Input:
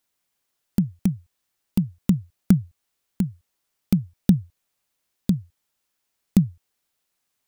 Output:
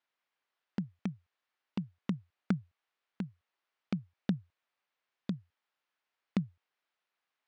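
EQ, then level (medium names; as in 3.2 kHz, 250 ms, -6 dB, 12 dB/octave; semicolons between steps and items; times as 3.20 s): band-pass filter 1.5 kHz, Q 0.59; distance through air 130 m; -1.0 dB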